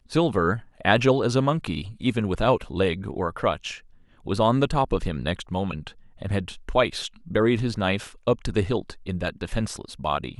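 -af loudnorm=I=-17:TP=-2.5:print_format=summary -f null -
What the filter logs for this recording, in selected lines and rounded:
Input Integrated:    -25.6 LUFS
Input True Peak:      -3.3 dBTP
Input LRA:             3.9 LU
Input Threshold:     -35.8 LUFS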